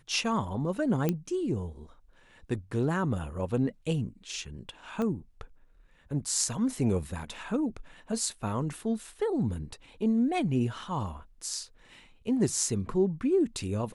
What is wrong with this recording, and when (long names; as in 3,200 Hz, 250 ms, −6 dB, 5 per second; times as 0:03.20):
0:01.09: click −14 dBFS
0:05.02: click −21 dBFS